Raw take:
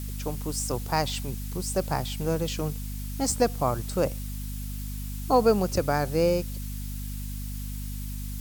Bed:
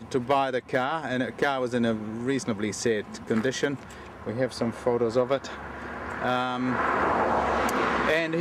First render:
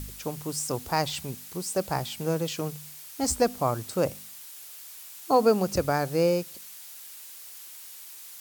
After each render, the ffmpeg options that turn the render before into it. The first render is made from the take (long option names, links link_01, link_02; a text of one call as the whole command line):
ffmpeg -i in.wav -af "bandreject=frequency=50:width_type=h:width=4,bandreject=frequency=100:width_type=h:width=4,bandreject=frequency=150:width_type=h:width=4,bandreject=frequency=200:width_type=h:width=4,bandreject=frequency=250:width_type=h:width=4" out.wav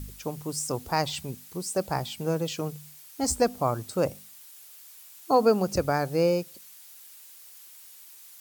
ffmpeg -i in.wav -af "afftdn=noise_reduction=6:noise_floor=-45" out.wav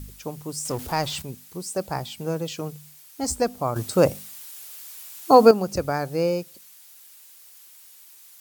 ffmpeg -i in.wav -filter_complex "[0:a]asettb=1/sr,asplit=3[link_01][link_02][link_03];[link_01]atrim=end=0.654[link_04];[link_02]atrim=start=0.65:end=1.22,asetpts=PTS-STARTPTS,afade=type=in:duration=0.004:curve=qsin,afade=type=out:start_time=0.566:duration=0.004:curve=qsin,aeval=exprs='val(0)+0.5*0.02*sgn(val(0))':channel_layout=same[link_05];[link_03]atrim=start=1.216[link_06];[link_04][link_05]acrossfade=duration=0.004:curve1=hsin:curve2=qsin[link_07];[link_07][link_06]acrossfade=duration=0.004:curve1=qsin:curve2=hsin,asplit=3[link_08][link_09][link_10];[link_08]atrim=end=3.762[link_11];[link_09]atrim=start=3.758:end=5.512,asetpts=PTS-STARTPTS,volume=8dB[link_12];[link_10]atrim=start=5.508[link_13];[link_11][link_12]acrossfade=duration=0.004:curve1=hsin:curve2=hsin[link_14];[link_14][link_13]acrossfade=duration=0.004:curve1=hsin:curve2=hsin" out.wav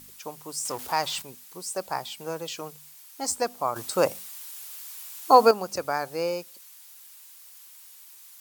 ffmpeg -i in.wav -af "highpass=frequency=760:poles=1,equalizer=frequency=980:width=2:gain=4" out.wav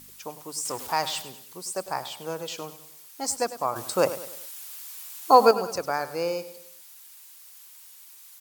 ffmpeg -i in.wav -af "aecho=1:1:101|202|303|404:0.2|0.0898|0.0404|0.0182" out.wav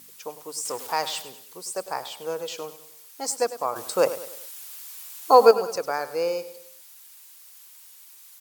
ffmpeg -i in.wav -af "highpass=frequency=300:poles=1,equalizer=frequency=470:width_type=o:width=0.33:gain=6.5" out.wav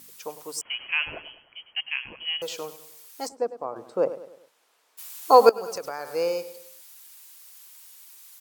ffmpeg -i in.wav -filter_complex "[0:a]asettb=1/sr,asplit=3[link_01][link_02][link_03];[link_01]atrim=end=0.614[link_04];[link_02]atrim=start=0.61:end=2.42,asetpts=PTS-STARTPTS,afade=type=in:duration=0.004:curve=qsin,afade=type=out:start_time=1.806:duration=0.004:curve=qsin,lowpass=frequency=2900:width_type=q:width=0.5098,lowpass=frequency=2900:width_type=q:width=0.6013,lowpass=frequency=2900:width_type=q:width=0.9,lowpass=frequency=2900:width_type=q:width=2.563,afreqshift=-3400[link_05];[link_03]atrim=start=2.416[link_06];[link_04][link_05]acrossfade=duration=0.004:curve1=hsin:curve2=qsin[link_07];[link_07][link_06]acrossfade=duration=0.004:curve1=qsin:curve2=hsin,asplit=3[link_08][link_09][link_10];[link_08]afade=type=out:start_time=3.27:duration=0.02[link_11];[link_09]bandpass=frequency=270:width_type=q:width=0.66,afade=type=in:start_time=3.27:duration=0.02,afade=type=out:start_time=4.97:duration=0.02[link_12];[link_10]afade=type=in:start_time=4.97:duration=0.02[link_13];[link_11][link_12][link_13]amix=inputs=3:normalize=0,asettb=1/sr,asplit=3[link_14][link_15][link_16];[link_14]atrim=end=5.494[link_17];[link_15]atrim=start=5.49:end=6.13,asetpts=PTS-STARTPTS,afade=type=in:duration=0.004:curve=qsin,afade=type=out:start_time=0.636:duration=0.004:curve=qsin,acompressor=threshold=-29dB:ratio=4:attack=3.2:release=140:knee=1:detection=peak[link_18];[link_16]atrim=start=6.126[link_19];[link_17][link_18]acrossfade=duration=0.004:curve1=hsin:curve2=qsin[link_20];[link_20][link_19]acrossfade=duration=0.004:curve1=qsin:curve2=hsin" out.wav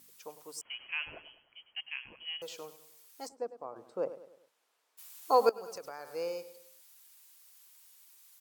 ffmpeg -i in.wav -af "volume=-10.5dB" out.wav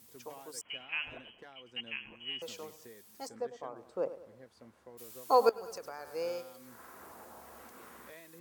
ffmpeg -i in.wav -i bed.wav -filter_complex "[1:a]volume=-28.5dB[link_01];[0:a][link_01]amix=inputs=2:normalize=0" out.wav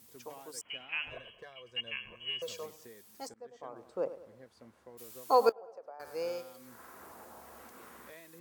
ffmpeg -i in.wav -filter_complex "[0:a]asettb=1/sr,asplit=3[link_01][link_02][link_03];[link_01]atrim=end=1.114[link_04];[link_02]atrim=start=1.11:end=2.66,asetpts=PTS-STARTPTS,afade=type=in:duration=0.004:curve=qsin,afade=type=out:start_time=1.546:duration=0.004:curve=qsin,aecho=1:1:1.8:0.74,atrim=end_sample=68355[link_05];[link_03]atrim=start=2.656[link_06];[link_04][link_05]acrossfade=duration=0.004:curve1=hsin:curve2=qsin[link_07];[link_07][link_06]acrossfade=duration=0.004:curve1=qsin:curve2=hsin,asettb=1/sr,asplit=3[link_08][link_09][link_10];[link_08]atrim=end=5.524[link_11];[link_09]atrim=start=5.52:end=6,asetpts=PTS-STARTPTS,afade=type=in:duration=0.004:curve=qsin,afade=type=out:start_time=0.476:duration=0.004:curve=qsin,bandpass=frequency=650:width_type=q:width=2.5[link_12];[link_10]atrim=start=5.996[link_13];[link_11][link_12]acrossfade=duration=0.004:curve1=hsin:curve2=qsin[link_14];[link_14][link_13]acrossfade=duration=0.004:curve1=qsin:curve2=hsin,asplit=2[link_15][link_16];[link_15]atrim=end=3.34,asetpts=PTS-STARTPTS,afade=type=out:start_time=3.336:duration=0.004:curve=hsin:silence=0.0707946[link_17];[link_16]atrim=start=3.34,asetpts=PTS-STARTPTS,afade=type=in:duration=0.44:silence=0.0707946[link_18];[link_17][link_18]concat=n=2:v=0:a=1" out.wav